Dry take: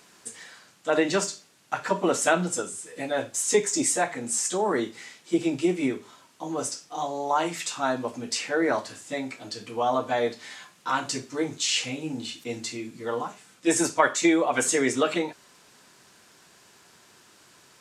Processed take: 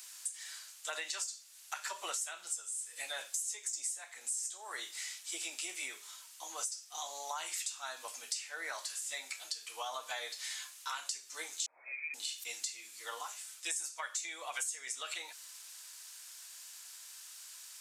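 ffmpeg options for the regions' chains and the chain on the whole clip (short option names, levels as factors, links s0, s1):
-filter_complex "[0:a]asettb=1/sr,asplit=3[s0][s1][s2];[s0]atrim=end=11.664[s3];[s1]atrim=start=11.66:end=12.14,asetpts=PTS-STARTPTS,afade=t=in:d=0.004:c=qsin,afade=t=out:st=0.476:d=0.004:c=qsin,lowshelf=f=320:g=-10,lowpass=f=2300:t=q:w=0.5098,lowpass=f=2300:t=q:w=0.6013,lowpass=f=2300:t=q:w=0.9,lowpass=f=2300:t=q:w=2.563,afreqshift=-2700[s4];[s2]atrim=start=12.136[s5];[s3][s4]acrossfade=d=0.004:c1=hsin:c2=qsin[s6];[s6][s5]acrossfade=d=0.004:c1=qsin:c2=hsin,highpass=650,aderivative,acompressor=threshold=0.00562:ratio=8,volume=2.66"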